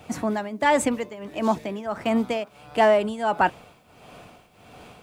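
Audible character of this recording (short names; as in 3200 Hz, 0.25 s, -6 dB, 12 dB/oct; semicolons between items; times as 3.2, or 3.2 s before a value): tremolo triangle 1.5 Hz, depth 85%; a quantiser's noise floor 12-bit, dither none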